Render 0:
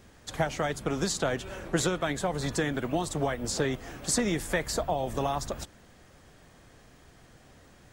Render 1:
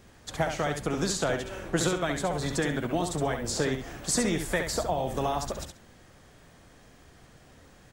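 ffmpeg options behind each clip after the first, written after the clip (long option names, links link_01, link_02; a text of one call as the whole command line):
ffmpeg -i in.wav -af "aecho=1:1:68|136|204:0.473|0.0852|0.0153" out.wav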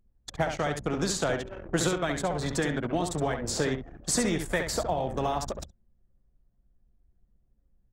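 ffmpeg -i in.wav -af "anlmdn=2.51" out.wav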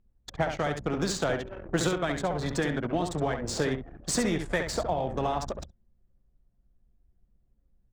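ffmpeg -i in.wav -af "adynamicsmooth=sensitivity=6.5:basefreq=4400" out.wav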